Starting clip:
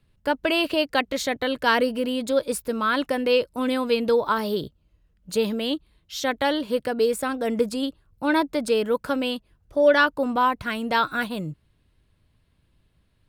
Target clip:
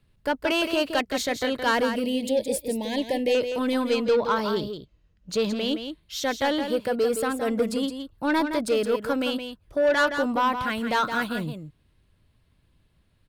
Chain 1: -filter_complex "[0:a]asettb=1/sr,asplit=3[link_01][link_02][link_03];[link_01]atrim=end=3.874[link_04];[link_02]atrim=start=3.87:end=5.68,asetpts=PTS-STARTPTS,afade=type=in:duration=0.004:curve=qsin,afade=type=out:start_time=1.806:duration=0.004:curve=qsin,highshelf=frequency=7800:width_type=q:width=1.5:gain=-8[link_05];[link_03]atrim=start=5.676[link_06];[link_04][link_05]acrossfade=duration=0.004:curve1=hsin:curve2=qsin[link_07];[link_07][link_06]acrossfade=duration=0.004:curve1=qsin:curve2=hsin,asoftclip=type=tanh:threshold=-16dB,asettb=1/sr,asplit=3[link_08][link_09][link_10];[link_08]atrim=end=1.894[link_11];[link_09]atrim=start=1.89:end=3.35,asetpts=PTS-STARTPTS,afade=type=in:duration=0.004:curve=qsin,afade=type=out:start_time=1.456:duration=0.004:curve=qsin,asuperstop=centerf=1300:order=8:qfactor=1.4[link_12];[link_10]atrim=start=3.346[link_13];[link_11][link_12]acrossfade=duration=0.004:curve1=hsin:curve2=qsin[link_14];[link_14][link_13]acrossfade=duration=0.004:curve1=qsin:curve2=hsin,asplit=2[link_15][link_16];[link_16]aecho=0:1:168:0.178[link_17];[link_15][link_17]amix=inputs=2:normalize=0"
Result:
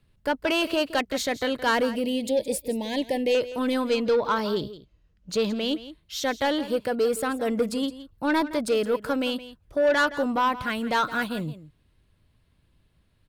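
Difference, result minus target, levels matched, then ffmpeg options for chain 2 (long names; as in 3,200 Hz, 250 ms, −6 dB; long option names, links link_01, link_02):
echo-to-direct −7 dB
-filter_complex "[0:a]asettb=1/sr,asplit=3[link_01][link_02][link_03];[link_01]atrim=end=3.874[link_04];[link_02]atrim=start=3.87:end=5.68,asetpts=PTS-STARTPTS,afade=type=in:duration=0.004:curve=qsin,afade=type=out:start_time=1.806:duration=0.004:curve=qsin,highshelf=frequency=7800:width_type=q:width=1.5:gain=-8[link_05];[link_03]atrim=start=5.676[link_06];[link_04][link_05]acrossfade=duration=0.004:curve1=hsin:curve2=qsin[link_07];[link_07][link_06]acrossfade=duration=0.004:curve1=qsin:curve2=hsin,asoftclip=type=tanh:threshold=-16dB,asettb=1/sr,asplit=3[link_08][link_09][link_10];[link_08]atrim=end=1.894[link_11];[link_09]atrim=start=1.89:end=3.35,asetpts=PTS-STARTPTS,afade=type=in:duration=0.004:curve=qsin,afade=type=out:start_time=1.456:duration=0.004:curve=qsin,asuperstop=centerf=1300:order=8:qfactor=1.4[link_12];[link_10]atrim=start=3.346[link_13];[link_11][link_12]acrossfade=duration=0.004:curve1=hsin:curve2=qsin[link_14];[link_14][link_13]acrossfade=duration=0.004:curve1=qsin:curve2=hsin,asplit=2[link_15][link_16];[link_16]aecho=0:1:168:0.398[link_17];[link_15][link_17]amix=inputs=2:normalize=0"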